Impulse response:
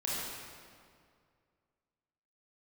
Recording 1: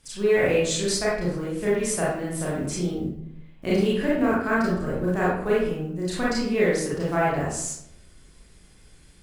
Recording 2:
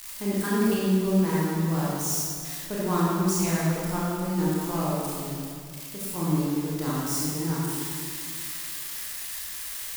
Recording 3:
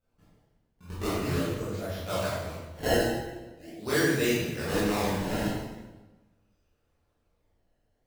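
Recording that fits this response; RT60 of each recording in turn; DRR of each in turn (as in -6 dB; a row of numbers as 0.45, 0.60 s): 2; 0.75, 2.2, 1.2 s; -8.0, -7.0, -10.5 dB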